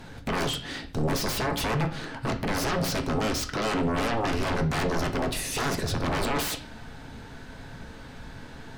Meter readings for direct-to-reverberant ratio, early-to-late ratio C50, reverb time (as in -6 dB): 5.0 dB, 13.0 dB, 0.45 s